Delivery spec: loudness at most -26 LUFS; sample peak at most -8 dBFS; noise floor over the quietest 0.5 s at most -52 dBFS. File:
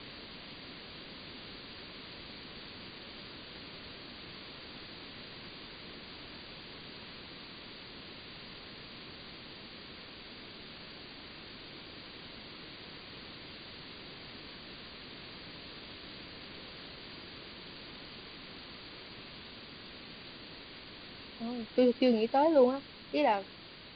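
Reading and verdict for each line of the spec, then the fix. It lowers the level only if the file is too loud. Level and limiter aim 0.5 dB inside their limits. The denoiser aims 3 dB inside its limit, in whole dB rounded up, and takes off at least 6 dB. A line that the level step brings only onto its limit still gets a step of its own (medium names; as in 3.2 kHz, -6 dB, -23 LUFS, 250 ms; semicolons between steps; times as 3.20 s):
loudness -38.5 LUFS: pass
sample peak -15.0 dBFS: pass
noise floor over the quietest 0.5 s -51 dBFS: fail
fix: noise reduction 6 dB, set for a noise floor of -51 dBFS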